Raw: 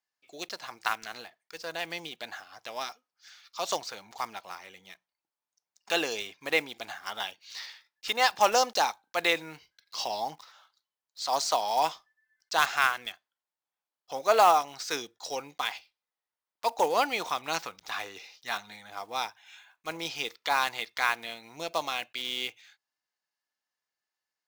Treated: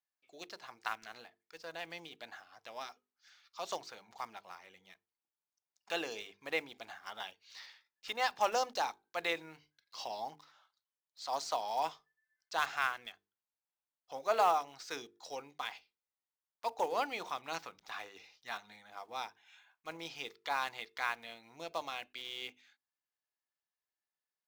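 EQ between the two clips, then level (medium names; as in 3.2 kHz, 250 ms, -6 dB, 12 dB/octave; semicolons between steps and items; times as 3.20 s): treble shelf 4.4 kHz -6.5 dB; hum notches 50/100/150/200/250/300/350/400/450 Hz; -8.0 dB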